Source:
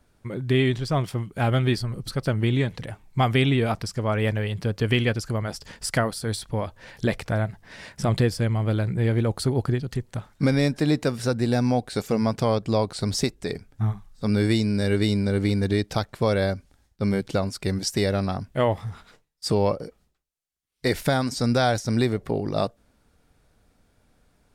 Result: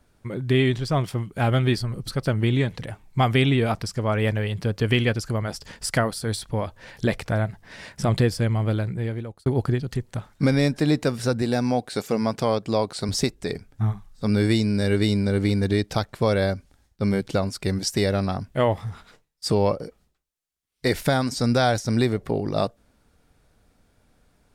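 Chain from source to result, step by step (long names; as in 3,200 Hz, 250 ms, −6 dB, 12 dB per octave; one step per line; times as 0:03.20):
0:08.64–0:09.46: fade out
0:11.42–0:13.09: high-pass filter 180 Hz 6 dB per octave
level +1 dB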